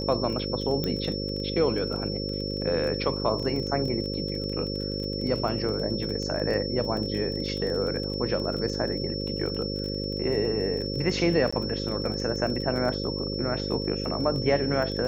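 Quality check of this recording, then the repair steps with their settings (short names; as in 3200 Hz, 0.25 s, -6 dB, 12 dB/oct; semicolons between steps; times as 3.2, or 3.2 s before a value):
buzz 50 Hz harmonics 11 -32 dBFS
crackle 20/s -32 dBFS
tone 5400 Hz -34 dBFS
0.84 pop -15 dBFS
11.51–11.53 gap 15 ms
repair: de-click; notch 5400 Hz, Q 30; de-hum 50 Hz, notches 11; interpolate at 11.51, 15 ms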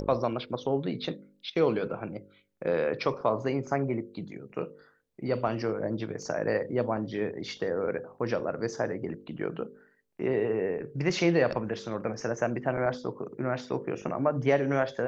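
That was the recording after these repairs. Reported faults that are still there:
none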